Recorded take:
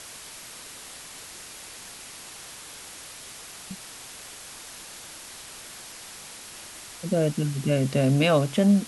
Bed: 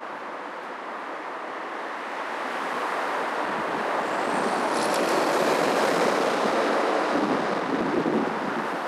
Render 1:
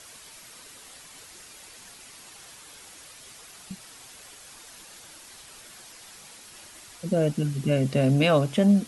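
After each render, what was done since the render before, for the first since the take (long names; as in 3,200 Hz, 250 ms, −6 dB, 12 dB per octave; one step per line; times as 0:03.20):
broadband denoise 7 dB, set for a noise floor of −43 dBFS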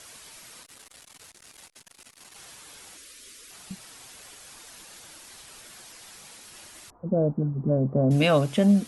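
0:00.63–0:02.36: saturating transformer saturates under 1,400 Hz
0:02.97–0:03.51: phaser with its sweep stopped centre 330 Hz, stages 4
0:06.90–0:08.11: Butterworth low-pass 1,100 Hz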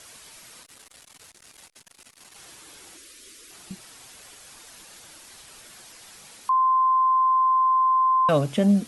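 0:02.44–0:03.81: parametric band 340 Hz +8.5 dB 0.38 octaves
0:06.49–0:08.29: beep over 1,040 Hz −16.5 dBFS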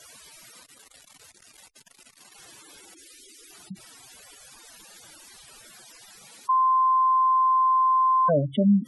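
mains-hum notches 50/100 Hz
gate on every frequency bin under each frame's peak −10 dB strong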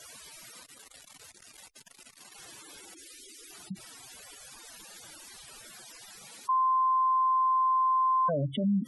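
brickwall limiter −22 dBFS, peak gain reduction 10 dB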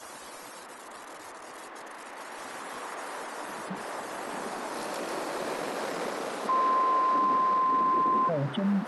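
mix in bed −11 dB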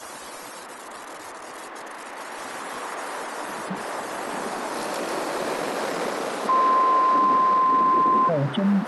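level +6 dB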